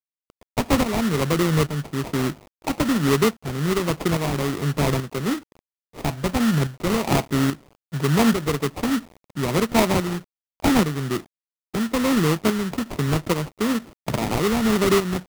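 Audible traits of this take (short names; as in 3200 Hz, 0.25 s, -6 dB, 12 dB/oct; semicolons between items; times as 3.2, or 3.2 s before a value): a quantiser's noise floor 8-bit, dither none; tremolo saw up 1.2 Hz, depth 60%; aliases and images of a low sample rate 1600 Hz, jitter 20%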